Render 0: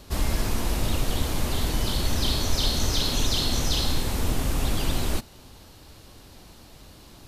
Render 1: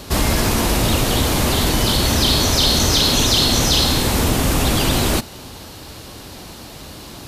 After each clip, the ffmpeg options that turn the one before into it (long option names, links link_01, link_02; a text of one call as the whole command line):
ffmpeg -i in.wav -filter_complex "[0:a]highpass=frequency=89:poles=1,asplit=2[link_01][link_02];[link_02]alimiter=limit=-24dB:level=0:latency=1,volume=1dB[link_03];[link_01][link_03]amix=inputs=2:normalize=0,volume=7.5dB" out.wav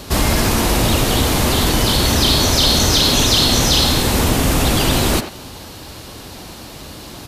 ffmpeg -i in.wav -filter_complex "[0:a]asplit=2[link_01][link_02];[link_02]adelay=90,highpass=300,lowpass=3400,asoftclip=type=hard:threshold=-12dB,volume=-9dB[link_03];[link_01][link_03]amix=inputs=2:normalize=0,volume=1.5dB" out.wav